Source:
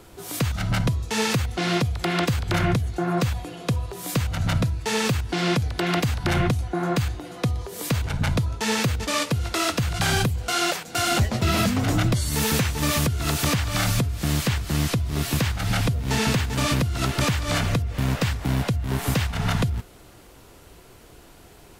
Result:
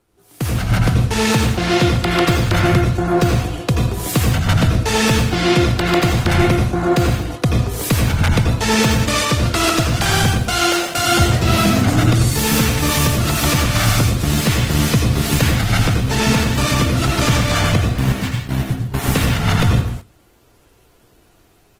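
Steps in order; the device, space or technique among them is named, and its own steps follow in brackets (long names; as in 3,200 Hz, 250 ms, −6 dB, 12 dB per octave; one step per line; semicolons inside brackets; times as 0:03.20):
0:18.12–0:18.94: noise gate −21 dBFS, range −23 dB
speakerphone in a meeting room (convolution reverb RT60 0.55 s, pre-delay 79 ms, DRR 1.5 dB; far-end echo of a speakerphone 120 ms, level −13 dB; automatic gain control gain up to 9 dB; noise gate −25 dBFS, range −15 dB; level −1 dB; Opus 20 kbit/s 48,000 Hz)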